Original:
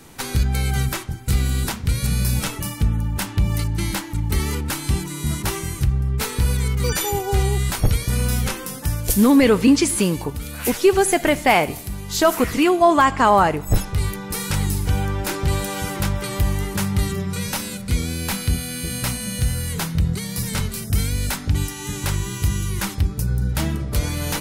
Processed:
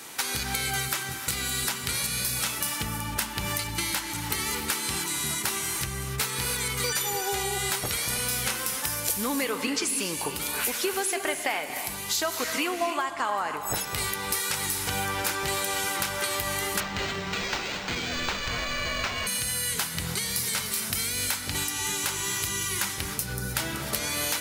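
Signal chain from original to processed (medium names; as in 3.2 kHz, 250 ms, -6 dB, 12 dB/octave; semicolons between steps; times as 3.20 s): high-pass 1.2 kHz 6 dB/octave; compression 10:1, threshold -33 dBFS, peak gain reduction 19 dB; gated-style reverb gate 340 ms rising, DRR 6.5 dB; 16.80–19.27 s: decimation joined by straight lines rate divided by 4×; trim +7.5 dB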